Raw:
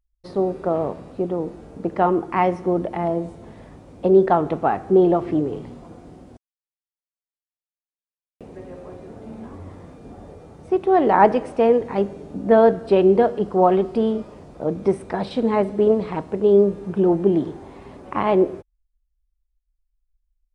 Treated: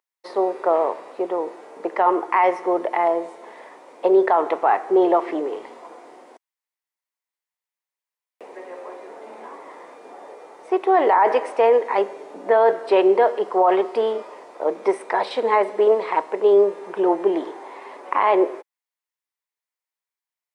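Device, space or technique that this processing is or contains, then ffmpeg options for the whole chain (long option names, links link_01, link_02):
laptop speaker: -af "highpass=frequency=400:width=0.5412,highpass=frequency=400:width=1.3066,equalizer=frequency=970:width_type=o:width=0.46:gain=8,equalizer=frequency=2000:width_type=o:width=0.48:gain=7.5,alimiter=limit=-11dB:level=0:latency=1:release=11,volume=3dB"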